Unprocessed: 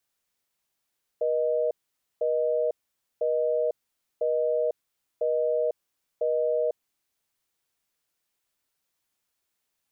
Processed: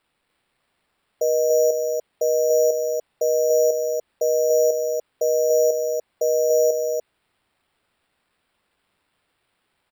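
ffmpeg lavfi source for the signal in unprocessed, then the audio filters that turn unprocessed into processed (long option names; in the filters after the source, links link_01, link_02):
-f lavfi -i "aevalsrc='0.0562*(sin(2*PI*480*t)+sin(2*PI*620*t))*clip(min(mod(t,1),0.5-mod(t,1))/0.005,0,1)':duration=5.87:sample_rate=44100"
-af "acrusher=samples=7:mix=1:aa=0.000001,acontrast=46,aecho=1:1:290:0.631"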